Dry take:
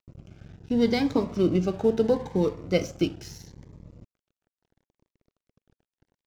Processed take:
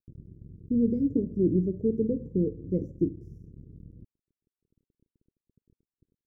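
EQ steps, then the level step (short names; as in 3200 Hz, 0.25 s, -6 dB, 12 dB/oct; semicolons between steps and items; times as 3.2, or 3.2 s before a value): inverse Chebyshev band-stop 740–4400 Hz, stop band 40 dB; air absorption 390 m; 0.0 dB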